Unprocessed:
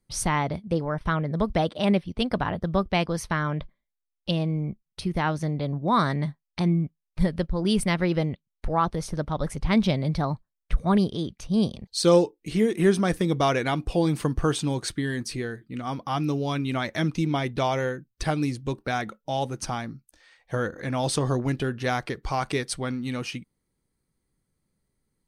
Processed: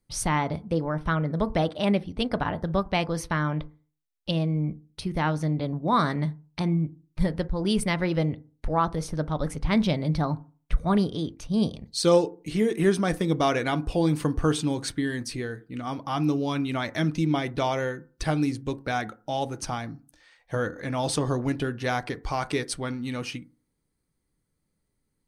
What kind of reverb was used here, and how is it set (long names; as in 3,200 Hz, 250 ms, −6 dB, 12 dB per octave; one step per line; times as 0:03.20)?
feedback delay network reverb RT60 0.38 s, low-frequency decay 1.1×, high-frequency decay 0.3×, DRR 13 dB
level −1 dB